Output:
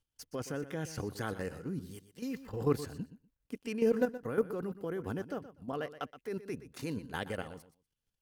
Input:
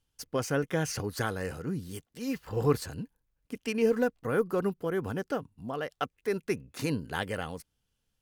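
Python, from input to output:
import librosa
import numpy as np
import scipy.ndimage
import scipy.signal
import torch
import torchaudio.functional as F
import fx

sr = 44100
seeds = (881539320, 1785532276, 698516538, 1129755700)

y = fx.dynamic_eq(x, sr, hz=280.0, q=0.79, threshold_db=-40.0, ratio=4.0, max_db=4)
y = fx.level_steps(y, sr, step_db=11)
y = fx.echo_feedback(y, sr, ms=122, feedback_pct=17, wet_db=-14.0)
y = y * librosa.db_to_amplitude(-3.0)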